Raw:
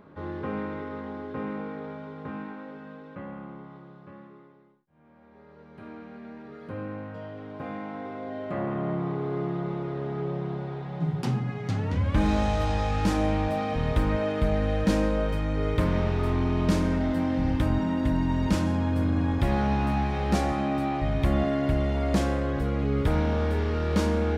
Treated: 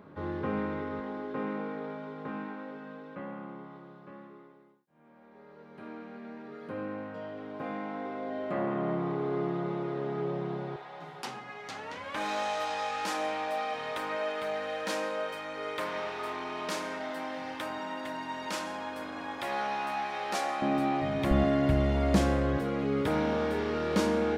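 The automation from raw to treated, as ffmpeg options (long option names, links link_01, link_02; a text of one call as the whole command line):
ffmpeg -i in.wav -af "asetnsamples=nb_out_samples=441:pad=0,asendcmd='1 highpass f 200;10.76 highpass f 680;20.62 highpass f 190;21.31 highpass f 58;22.58 highpass f 210',highpass=70" out.wav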